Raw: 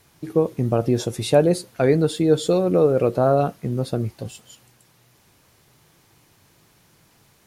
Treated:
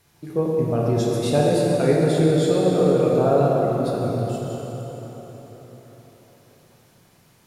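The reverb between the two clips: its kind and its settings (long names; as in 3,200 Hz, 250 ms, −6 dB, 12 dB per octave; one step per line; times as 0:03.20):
dense smooth reverb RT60 4.6 s, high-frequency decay 0.7×, DRR −4 dB
level −5 dB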